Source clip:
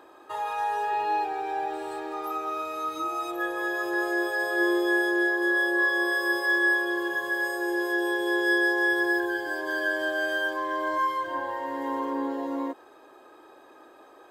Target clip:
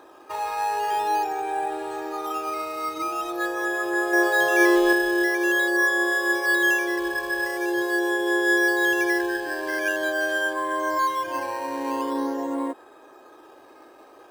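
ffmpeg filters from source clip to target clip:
ffmpeg -i in.wav -filter_complex "[0:a]asettb=1/sr,asplit=3[link_01][link_02][link_03];[link_01]atrim=end=4.134[link_04];[link_02]atrim=start=4.13:end=4.93,asetpts=PTS-STARTPTS,afade=type=in:duration=0.004:curve=qsin,afade=type=out:start_time=0.796:duration=0.004:curve=qsin,equalizer=frequency=990:width=0.41:gain=6[link_05];[link_03]atrim=start=4.926[link_06];[link_04][link_05]acrossfade=duration=0.004:curve1=hsin:curve2=qsin[link_07];[link_07][link_06]acrossfade=duration=0.004:curve1=qsin:curve2=hsin,asplit=2[link_08][link_09];[link_09]acrusher=samples=9:mix=1:aa=0.000001:lfo=1:lforange=9:lforate=0.45,volume=-7dB[link_10];[link_08][link_10]amix=inputs=2:normalize=0" out.wav

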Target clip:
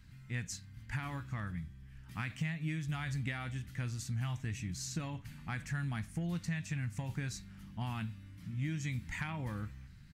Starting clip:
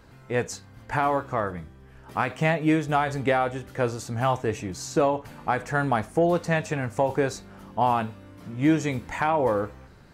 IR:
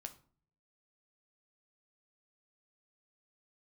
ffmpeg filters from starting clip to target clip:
-af "firequalizer=gain_entry='entry(160,0);entry(440,-27);entry(1900,-4)':delay=0.05:min_phase=1,acompressor=threshold=-31dB:ratio=6,volume=-2dB"

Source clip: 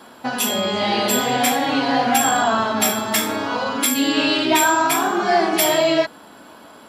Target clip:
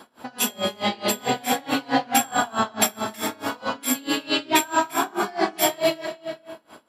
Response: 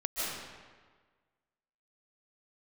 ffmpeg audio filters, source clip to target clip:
-filter_complex "[0:a]asplit=2[link_01][link_02];[1:a]atrim=start_sample=2205,adelay=107[link_03];[link_02][link_03]afir=irnorm=-1:irlink=0,volume=-18dB[link_04];[link_01][link_04]amix=inputs=2:normalize=0,aeval=exprs='val(0)*pow(10,-26*(0.5-0.5*cos(2*PI*4.6*n/s))/20)':channel_layout=same"

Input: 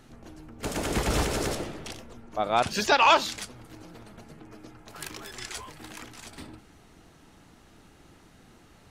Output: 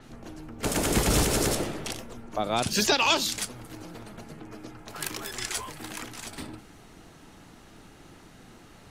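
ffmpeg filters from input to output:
ffmpeg -i in.wav -filter_complex "[0:a]equalizer=frequency=67:width_type=o:width=0.42:gain=-6.5,acrossover=split=380|3000[link_01][link_02][link_03];[link_02]acompressor=threshold=-33dB:ratio=4[link_04];[link_01][link_04][link_03]amix=inputs=3:normalize=0,adynamicequalizer=threshold=0.00355:dfrequency=7500:dqfactor=0.7:tfrequency=7500:tqfactor=0.7:attack=5:release=100:ratio=0.375:range=3:mode=boostabove:tftype=highshelf,volume=4.5dB" out.wav

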